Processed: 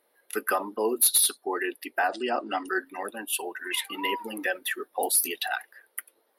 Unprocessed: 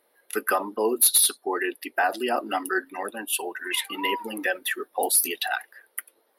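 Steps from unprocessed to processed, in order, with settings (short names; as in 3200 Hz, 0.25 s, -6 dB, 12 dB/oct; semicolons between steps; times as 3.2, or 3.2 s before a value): 2.08–2.68 brick-wall FIR low-pass 9500 Hz; gain -2.5 dB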